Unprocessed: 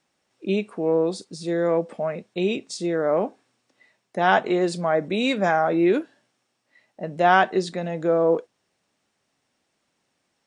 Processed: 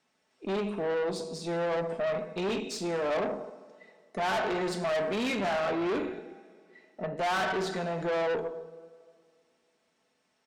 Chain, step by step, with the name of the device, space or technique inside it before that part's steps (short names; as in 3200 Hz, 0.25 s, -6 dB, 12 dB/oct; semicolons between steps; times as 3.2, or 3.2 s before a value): 5.99–7.17 treble ducked by the level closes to 2500 Hz, closed at -30 dBFS; comb 4.6 ms, depth 42%; two-slope reverb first 0.8 s, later 2.3 s, from -18 dB, DRR 5.5 dB; tube preamp driven hard (tube stage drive 26 dB, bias 0.4; low shelf 150 Hz -7.5 dB; high shelf 6200 Hz -7 dB)